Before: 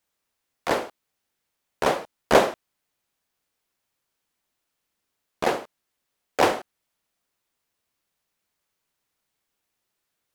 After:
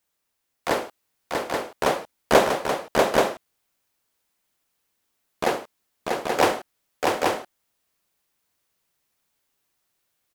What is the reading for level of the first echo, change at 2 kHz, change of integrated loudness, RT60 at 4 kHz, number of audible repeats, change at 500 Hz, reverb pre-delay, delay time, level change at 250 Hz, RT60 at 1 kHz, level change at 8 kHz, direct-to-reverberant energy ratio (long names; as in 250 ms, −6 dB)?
−3.5 dB, +3.0 dB, 0.0 dB, no reverb audible, 2, +3.0 dB, no reverb audible, 641 ms, +3.0 dB, no reverb audible, +4.5 dB, no reverb audible